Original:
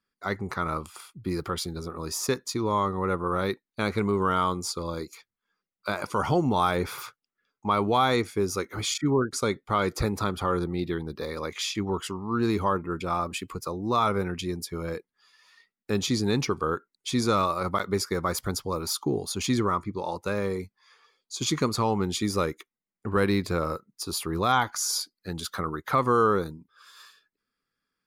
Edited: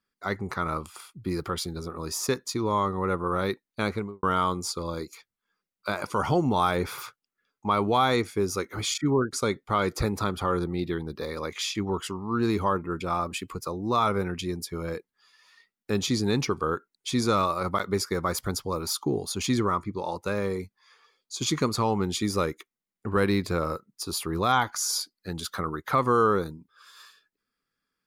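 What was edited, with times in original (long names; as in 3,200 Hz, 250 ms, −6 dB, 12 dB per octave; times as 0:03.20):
0:03.83–0:04.23: fade out and dull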